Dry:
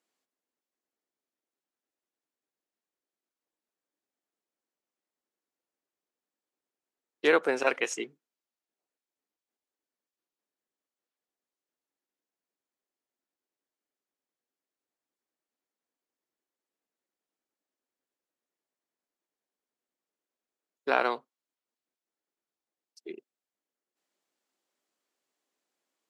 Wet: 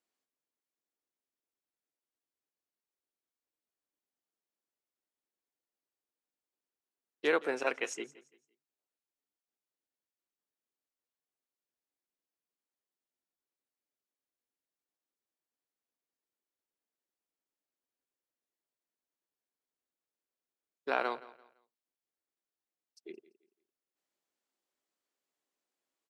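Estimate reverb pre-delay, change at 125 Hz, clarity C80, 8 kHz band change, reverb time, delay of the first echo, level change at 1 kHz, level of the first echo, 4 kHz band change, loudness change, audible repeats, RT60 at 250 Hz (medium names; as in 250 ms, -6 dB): no reverb, no reading, no reverb, -6.0 dB, no reverb, 170 ms, -6.0 dB, -19.0 dB, -6.0 dB, -6.0 dB, 2, no reverb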